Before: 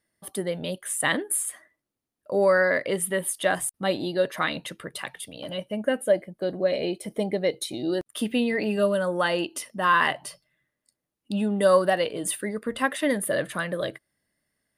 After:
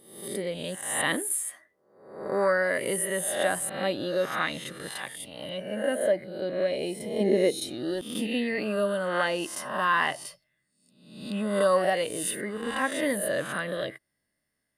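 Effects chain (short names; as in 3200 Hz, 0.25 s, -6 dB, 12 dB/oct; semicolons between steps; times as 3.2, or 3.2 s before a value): spectral swells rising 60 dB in 0.73 s; 7.2–7.6 small resonant body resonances 240/360/2600 Hz, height 11 dB; gain -5 dB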